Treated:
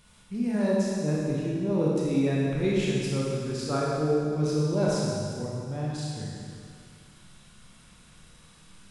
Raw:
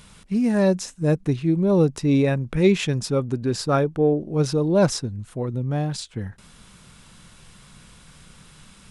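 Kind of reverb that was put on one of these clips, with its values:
four-comb reverb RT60 2.2 s, combs from 26 ms, DRR −5 dB
level −11.5 dB

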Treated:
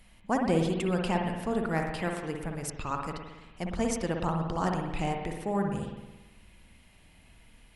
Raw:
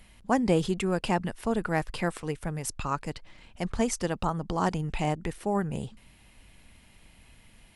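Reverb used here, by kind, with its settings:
spring reverb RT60 1.1 s, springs 55 ms, chirp 75 ms, DRR 2 dB
level −3.5 dB

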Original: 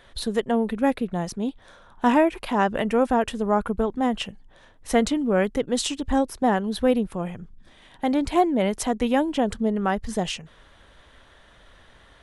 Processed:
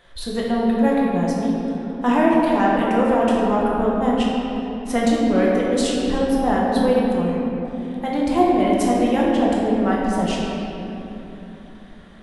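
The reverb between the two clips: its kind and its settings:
rectangular room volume 190 cubic metres, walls hard, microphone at 0.84 metres
level −3 dB

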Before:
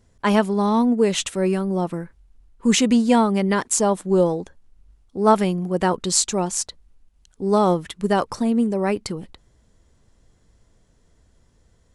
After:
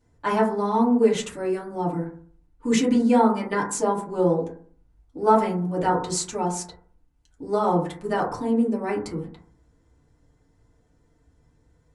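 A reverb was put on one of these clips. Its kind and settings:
feedback delay network reverb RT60 0.49 s, low-frequency decay 1.2×, high-frequency decay 0.25×, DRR −7 dB
level −11 dB

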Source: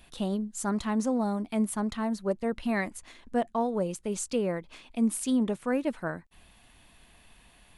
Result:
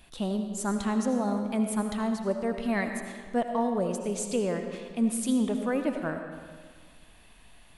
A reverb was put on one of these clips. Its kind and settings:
comb and all-pass reverb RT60 1.7 s, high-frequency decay 0.8×, pre-delay 40 ms, DRR 5.5 dB

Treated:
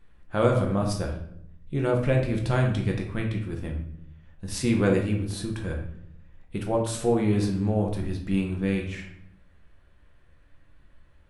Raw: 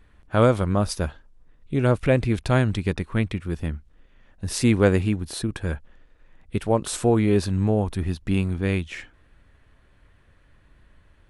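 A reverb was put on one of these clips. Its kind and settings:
rectangular room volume 140 cubic metres, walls mixed, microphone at 0.82 metres
level −6.5 dB

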